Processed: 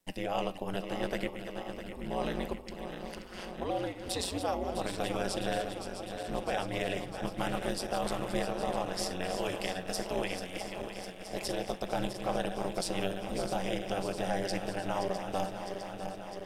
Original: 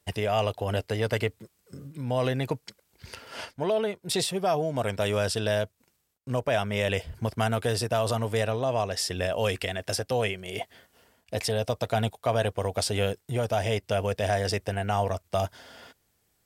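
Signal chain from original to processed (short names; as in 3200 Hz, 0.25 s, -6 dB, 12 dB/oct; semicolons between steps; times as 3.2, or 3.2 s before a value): regenerating reverse delay 0.328 s, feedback 83%, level -9 dB; ring modulator 93 Hz; flange 0.76 Hz, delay 9.4 ms, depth 6.7 ms, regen -87%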